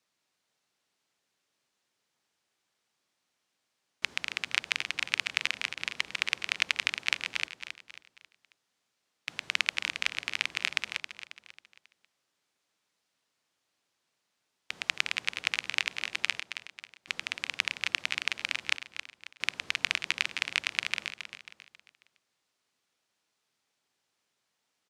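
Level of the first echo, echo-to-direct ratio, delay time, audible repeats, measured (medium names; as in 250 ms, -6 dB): -10.0 dB, -9.0 dB, 271 ms, 4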